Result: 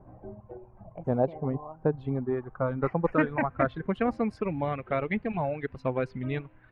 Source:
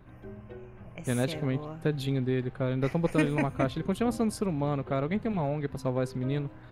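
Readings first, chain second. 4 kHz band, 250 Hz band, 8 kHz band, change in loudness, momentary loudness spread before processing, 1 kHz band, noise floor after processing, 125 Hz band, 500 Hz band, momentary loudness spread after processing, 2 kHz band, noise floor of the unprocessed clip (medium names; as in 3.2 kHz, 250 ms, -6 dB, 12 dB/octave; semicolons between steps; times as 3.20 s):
under -10 dB, -1.5 dB, under -25 dB, 0.0 dB, 16 LU, +4.0 dB, -55 dBFS, -3.0 dB, +2.0 dB, 16 LU, +2.5 dB, -49 dBFS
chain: reverb removal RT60 1.9 s; dynamic bell 730 Hz, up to +3 dB, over -43 dBFS, Q 0.92; low-pass sweep 770 Hz -> 2.4 kHz, 1.38–4.57 s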